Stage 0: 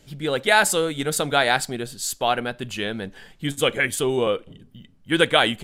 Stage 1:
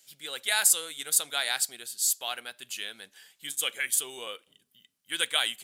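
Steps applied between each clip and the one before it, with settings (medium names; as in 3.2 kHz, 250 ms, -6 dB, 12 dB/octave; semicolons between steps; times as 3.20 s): differentiator; trim +2 dB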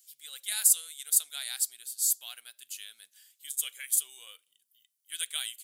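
pre-emphasis filter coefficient 0.97; trim -1.5 dB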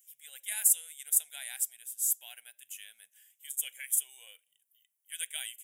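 static phaser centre 1.2 kHz, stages 6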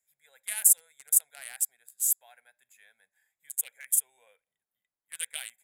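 local Wiener filter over 15 samples; trim +4.5 dB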